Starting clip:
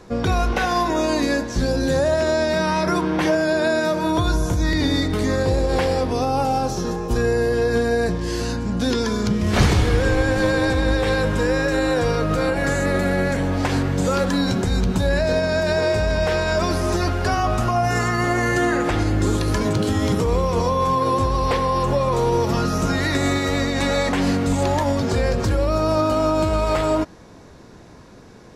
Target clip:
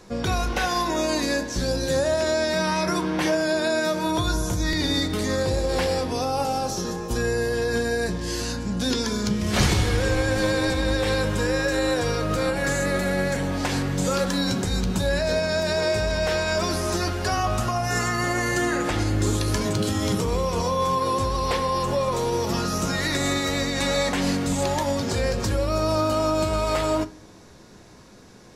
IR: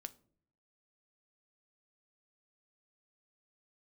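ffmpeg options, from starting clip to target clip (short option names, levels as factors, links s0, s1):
-filter_complex "[0:a]highshelf=f=2900:g=8.5[s0];[1:a]atrim=start_sample=2205[s1];[s0][s1]afir=irnorm=-1:irlink=0"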